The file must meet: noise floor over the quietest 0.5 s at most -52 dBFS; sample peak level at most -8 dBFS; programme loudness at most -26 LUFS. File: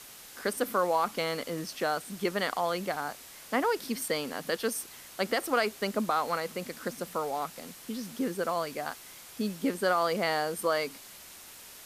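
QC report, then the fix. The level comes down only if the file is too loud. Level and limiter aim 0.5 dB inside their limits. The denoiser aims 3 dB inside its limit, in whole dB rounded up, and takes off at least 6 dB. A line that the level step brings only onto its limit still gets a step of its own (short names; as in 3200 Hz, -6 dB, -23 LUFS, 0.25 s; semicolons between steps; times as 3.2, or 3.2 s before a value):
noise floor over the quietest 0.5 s -49 dBFS: fail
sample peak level -15.5 dBFS: OK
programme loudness -31.5 LUFS: OK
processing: denoiser 6 dB, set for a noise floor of -49 dBFS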